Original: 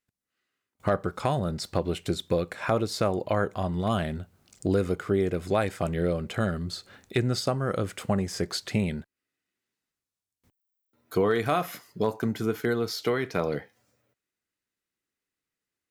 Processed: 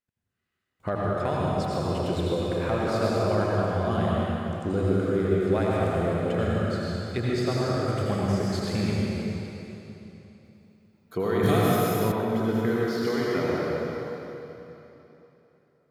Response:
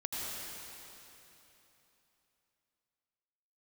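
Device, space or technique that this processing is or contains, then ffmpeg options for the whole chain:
swimming-pool hall: -filter_complex "[1:a]atrim=start_sample=2205[a];[0:a][a]afir=irnorm=-1:irlink=0,highshelf=f=3.8k:g=-7.5,asettb=1/sr,asplit=3[b][c][d];[b]atrim=end=11.434[e];[c]atrim=start=11.43:end=12.12,asetpts=PTS-STARTPTS,afade=t=in:d=0.004:c=qsin,afade=t=out:st=0.686:d=0.004:c=qsin,bass=f=250:g=9,treble=f=4k:g=15[f];[d]atrim=start=12.116[g];[e][f]acrossfade=d=0.004:c1=hsin:c2=qsin[h];[h][g]acrossfade=d=0.004:c1=qsin:c2=hsin,volume=-1.5dB"

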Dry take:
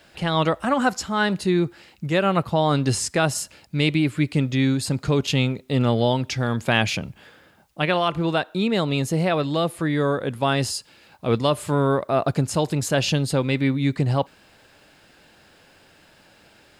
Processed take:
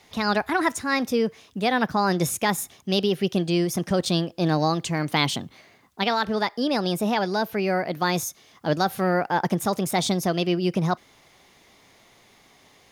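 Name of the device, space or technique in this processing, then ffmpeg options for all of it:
nightcore: -af "asetrate=57330,aresample=44100,volume=-2dB"

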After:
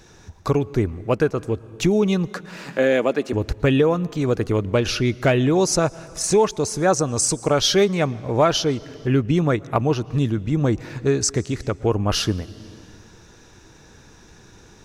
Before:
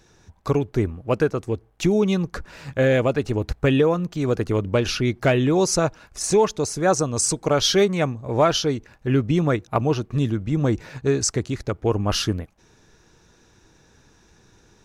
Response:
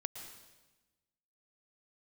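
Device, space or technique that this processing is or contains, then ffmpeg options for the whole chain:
ducked reverb: -filter_complex "[0:a]asettb=1/sr,asplit=3[a][b][c];[a]atrim=end=2.284[d];[b]atrim=start=2.28:end=3.33,asetpts=PTS-STARTPTS,afade=t=in:d=0.004:c=qsin,afade=t=out:st=1.046:d=0.004:c=qsin,highpass=f=200:w=0.5412,highpass=f=200:w=1.3066[e];[c]atrim=start=3.326[f];[d][e]acrossfade=d=0.004:c1=hsin:c2=qsin[g];[g][f]acrossfade=d=0.004:c1=qsin:c2=hsin,asplit=3[h][i][j];[1:a]atrim=start_sample=2205[k];[i][k]afir=irnorm=-1:irlink=0[l];[j]apad=whole_len=654523[m];[l][m]sidechaincompress=threshold=-37dB:ratio=12:attack=40:release=429,volume=4dB[n];[h][n]amix=inputs=2:normalize=0"

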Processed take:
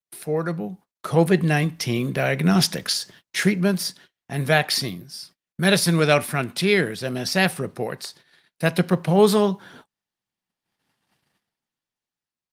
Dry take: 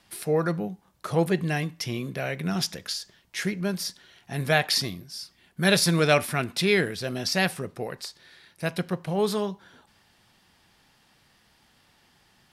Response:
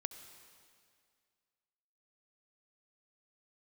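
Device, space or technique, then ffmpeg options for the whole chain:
video call: -af "highpass=f=110:w=0.5412,highpass=f=110:w=1.3066,lowshelf=f=150:g=2.5,dynaudnorm=f=230:g=9:m=15.5dB,agate=range=-38dB:threshold=-43dB:ratio=16:detection=peak,volume=-1dB" -ar 48000 -c:a libopus -b:a 32k

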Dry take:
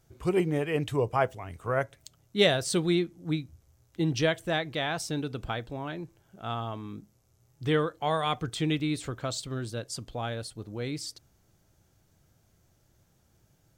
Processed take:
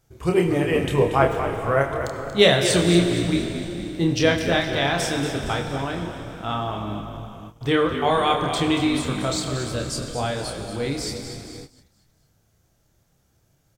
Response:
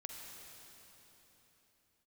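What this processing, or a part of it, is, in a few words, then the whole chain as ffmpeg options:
keyed gated reverb: -filter_complex "[0:a]bandreject=f=50:t=h:w=6,bandreject=f=100:t=h:w=6,bandreject=f=150:t=h:w=6,bandreject=f=200:t=h:w=6,bandreject=f=250:t=h:w=6,bandreject=f=300:t=h:w=6,bandreject=f=350:t=h:w=6,asplit=2[a][b];[b]adelay=29,volume=-5dB[c];[a][c]amix=inputs=2:normalize=0,asplit=6[d][e][f][g][h][i];[e]adelay=233,afreqshift=-56,volume=-10dB[j];[f]adelay=466,afreqshift=-112,volume=-16.7dB[k];[g]adelay=699,afreqshift=-168,volume=-23.5dB[l];[h]adelay=932,afreqshift=-224,volume=-30.2dB[m];[i]adelay=1165,afreqshift=-280,volume=-37dB[n];[d][j][k][l][m][n]amix=inputs=6:normalize=0,asplit=3[o][p][q];[1:a]atrim=start_sample=2205[r];[p][r]afir=irnorm=-1:irlink=0[s];[q]apad=whole_len=660169[t];[s][t]sidechaingate=range=-33dB:threshold=-54dB:ratio=16:detection=peak,volume=5.5dB[u];[o][u]amix=inputs=2:normalize=0"

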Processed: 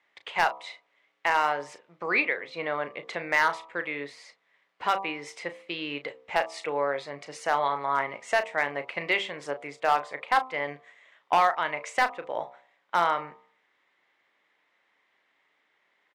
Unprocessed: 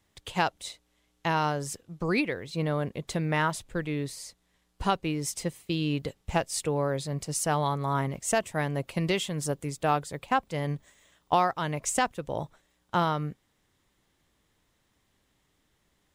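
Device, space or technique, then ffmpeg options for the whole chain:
megaphone: -filter_complex "[0:a]highpass=600,lowpass=2.6k,equalizer=f=2.1k:t=o:w=0.46:g=7.5,bandreject=f=64.84:t=h:w=4,bandreject=f=129.68:t=h:w=4,bandreject=f=194.52:t=h:w=4,bandreject=f=259.36:t=h:w=4,bandreject=f=324.2:t=h:w=4,bandreject=f=389.04:t=h:w=4,bandreject=f=453.88:t=h:w=4,bandreject=f=518.72:t=h:w=4,bandreject=f=583.56:t=h:w=4,bandreject=f=648.4:t=h:w=4,bandreject=f=713.24:t=h:w=4,bandreject=f=778.08:t=h:w=4,bandreject=f=842.92:t=h:w=4,bandreject=f=907.76:t=h:w=4,bandreject=f=972.6:t=h:w=4,bandreject=f=1.03744k:t=h:w=4,bandreject=f=1.10228k:t=h:w=4,bandreject=f=1.16712k:t=h:w=4,bandreject=f=1.23196k:t=h:w=4,bandreject=f=1.2968k:t=h:w=4,asoftclip=type=hard:threshold=-18.5dB,asplit=2[a][b];[b]adelay=35,volume=-11.5dB[c];[a][c]amix=inputs=2:normalize=0,volume=4.5dB"

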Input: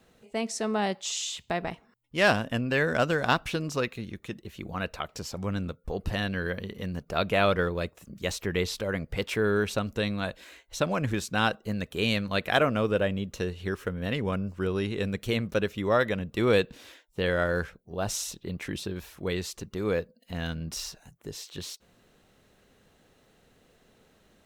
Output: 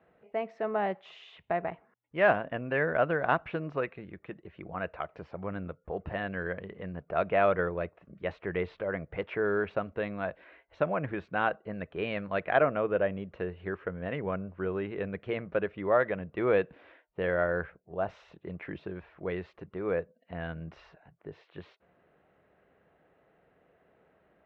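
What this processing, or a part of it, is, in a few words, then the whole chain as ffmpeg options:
bass cabinet: -af "highpass=84,equalizer=f=110:t=q:w=4:g=-9,equalizer=f=230:t=q:w=4:g=-9,equalizer=f=660:t=q:w=4:g=5,lowpass=f=2.2k:w=0.5412,lowpass=f=2.2k:w=1.3066,volume=-2.5dB"

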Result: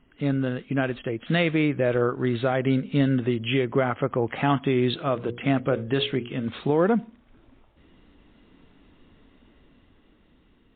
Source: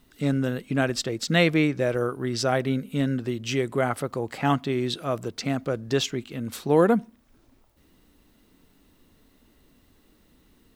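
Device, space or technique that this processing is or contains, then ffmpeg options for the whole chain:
low-bitrate web radio: -filter_complex "[0:a]asettb=1/sr,asplit=3[a][b][c];[a]atrim=end=4.944[d];[b]atrim=start=4.94:end=6.48,asetpts=PTS-STARTPTS,afade=t=in:d=0.004:c=qsin,afade=t=out:st=1.536:d=0.004:c=qsin,bandreject=f=60:t=h:w=6,bandreject=f=120:t=h:w=6,bandreject=f=180:t=h:w=6,bandreject=f=240:t=h:w=6,bandreject=f=300:t=h:w=6,bandreject=f=360:t=h:w=6,bandreject=f=420:t=h:w=6,bandreject=f=480:t=h:w=6,bandreject=f=540:t=h:w=6[e];[c]atrim=start=6.476[f];[d][e]acrossfade=d=0.004:c1=hsin:c2=qsin[g];[g][f]acrossfade=d=0.004:c1=qsin:c2=hsin,dynaudnorm=f=500:g=7:m=6dB,alimiter=limit=-12dB:level=0:latency=1:release=144" -ar 8000 -c:a libmp3lame -b:a 24k

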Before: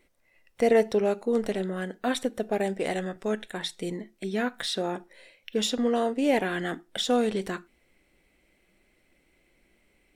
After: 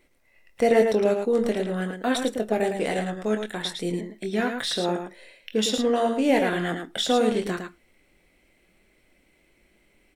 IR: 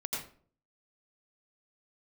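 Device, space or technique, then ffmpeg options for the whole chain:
slapback doubling: -filter_complex "[0:a]asplit=3[a][b][c];[b]adelay=23,volume=-8dB[d];[c]adelay=109,volume=-6dB[e];[a][d][e]amix=inputs=3:normalize=0,volume=2dB"

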